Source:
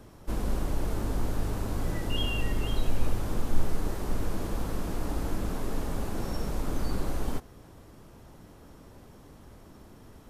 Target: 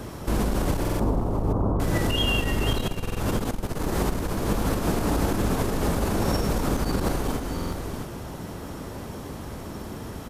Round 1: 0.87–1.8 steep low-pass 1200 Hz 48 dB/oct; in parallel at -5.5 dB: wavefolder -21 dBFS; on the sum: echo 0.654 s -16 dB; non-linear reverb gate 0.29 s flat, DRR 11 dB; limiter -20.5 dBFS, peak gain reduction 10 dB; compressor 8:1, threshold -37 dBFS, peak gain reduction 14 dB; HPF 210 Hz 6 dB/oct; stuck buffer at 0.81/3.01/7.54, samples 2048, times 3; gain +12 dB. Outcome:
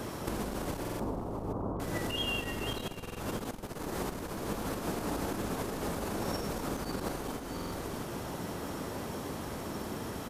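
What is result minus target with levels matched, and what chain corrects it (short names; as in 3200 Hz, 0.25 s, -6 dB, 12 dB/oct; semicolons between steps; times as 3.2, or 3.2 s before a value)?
compressor: peak gain reduction +8 dB; 125 Hz band -3.5 dB
0.87–1.8 steep low-pass 1200 Hz 48 dB/oct; in parallel at -5.5 dB: wavefolder -21 dBFS; on the sum: echo 0.654 s -16 dB; non-linear reverb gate 0.29 s flat, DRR 11 dB; limiter -20.5 dBFS, peak gain reduction 10 dB; compressor 8:1, threshold -28 dBFS, peak gain reduction 6 dB; HPF 53 Hz 6 dB/oct; stuck buffer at 0.81/3.01/7.54, samples 2048, times 3; gain +12 dB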